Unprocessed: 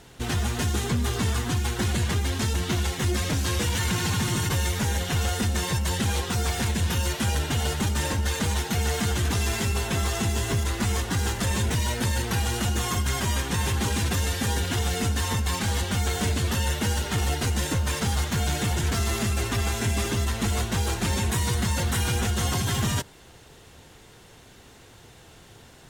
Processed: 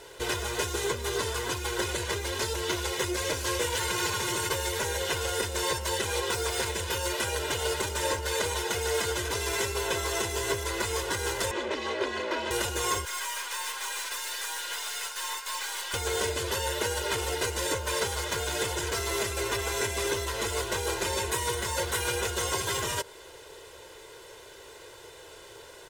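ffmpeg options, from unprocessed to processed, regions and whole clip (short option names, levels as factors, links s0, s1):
-filter_complex "[0:a]asettb=1/sr,asplit=3[s0][s1][s2];[s0]atrim=end=11.514[s3];[s1]atrim=start=11.51:end=12.51,asetpts=PTS-STARTPTS,afade=t=in:d=0.004:c=qsin,afade=t=out:st=0.996:d=0.004:c=qsin,aeval=exprs='val(0)*sin(2*PI*150*n/s)':c=same,highpass=140,lowpass=3300[s4];[s2]atrim=start=12.506[s5];[s3][s4]acrossfade=d=0.004:c1=hsin:c2=qsin[s6];[s6][s5]acrossfade=d=0.004:c1=qsin:c2=hsin,asettb=1/sr,asplit=3[s7][s8][s9];[s7]atrim=end=13.054[s10];[s8]atrim=start=13.05:end=15.94,asetpts=PTS-STARTPTS,afade=t=in:d=0.004:c=qsin,afade=t=out:st=2.886:d=0.004:c=qsin,highpass=f=910:w=0.5412,highpass=f=910:w=1.3066,aeval=exprs='(tanh(50.1*val(0)+0.6)-tanh(0.6))/50.1':c=same[s11];[s9]atrim=start=15.936[s12];[s10][s11]acrossfade=d=0.004:c1=hsin:c2=qsin[s13];[s13][s12]acrossfade=d=0.004:c1=qsin:c2=hsin,acompressor=threshold=0.0501:ratio=6,lowshelf=f=260:t=q:w=1.5:g=-12,aecho=1:1:2:0.65,volume=1.19"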